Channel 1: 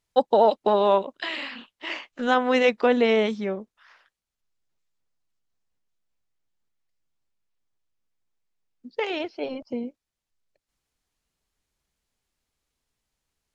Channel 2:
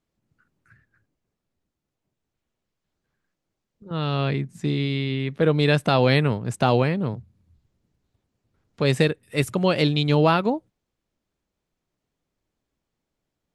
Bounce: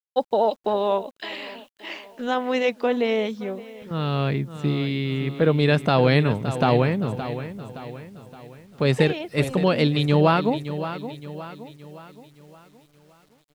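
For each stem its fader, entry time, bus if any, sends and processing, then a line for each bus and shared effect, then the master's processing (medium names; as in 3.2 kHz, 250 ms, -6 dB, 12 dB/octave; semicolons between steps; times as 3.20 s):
-2.0 dB, 0.00 s, no send, echo send -19 dB, peaking EQ 1.4 kHz -4 dB 0.91 oct
+0.5 dB, 0.00 s, no send, echo send -11.5 dB, treble shelf 4.5 kHz -6.5 dB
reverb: none
echo: feedback delay 569 ms, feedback 46%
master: bit crusher 10-bit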